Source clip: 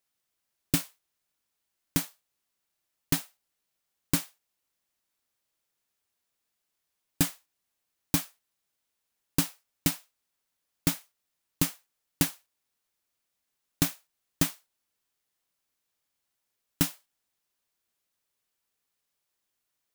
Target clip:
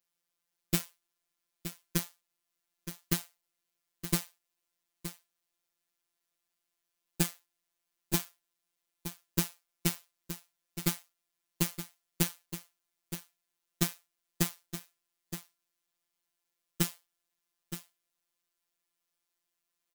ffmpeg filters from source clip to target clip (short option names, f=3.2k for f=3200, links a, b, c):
-af "afftfilt=real='hypot(re,im)*cos(PI*b)':imag='0':win_size=1024:overlap=0.75,aecho=1:1:920:0.282"